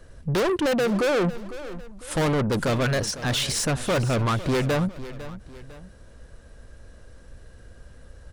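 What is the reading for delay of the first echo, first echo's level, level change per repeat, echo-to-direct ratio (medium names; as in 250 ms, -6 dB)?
502 ms, -15.0 dB, -7.5 dB, -14.5 dB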